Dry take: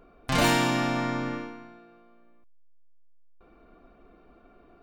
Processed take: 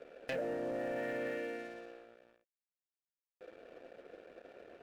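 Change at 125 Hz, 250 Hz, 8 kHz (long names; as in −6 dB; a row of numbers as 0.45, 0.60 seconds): −23.5 dB, −15.5 dB, below −25 dB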